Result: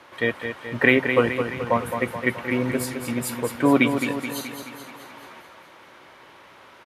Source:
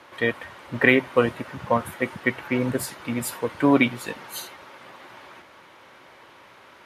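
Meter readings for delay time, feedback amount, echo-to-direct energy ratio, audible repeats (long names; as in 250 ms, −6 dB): 214 ms, 56%, −6.0 dB, 6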